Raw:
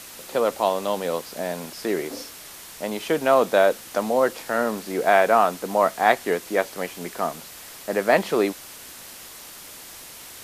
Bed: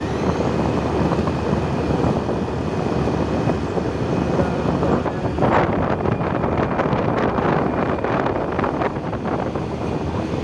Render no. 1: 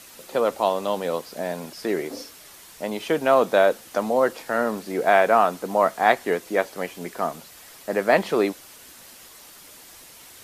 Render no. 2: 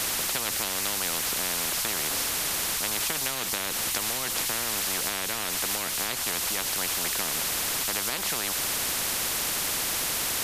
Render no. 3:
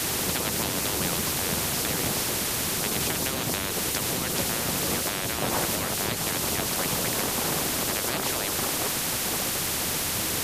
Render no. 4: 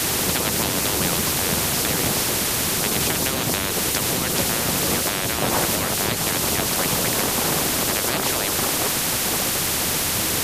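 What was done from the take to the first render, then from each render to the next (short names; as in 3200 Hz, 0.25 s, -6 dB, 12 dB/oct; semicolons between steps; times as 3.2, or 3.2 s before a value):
denoiser 6 dB, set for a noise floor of -42 dBFS
compressor, threshold -23 dBFS, peak gain reduction 11.5 dB; spectral compressor 10:1
add bed -13 dB
gain +5.5 dB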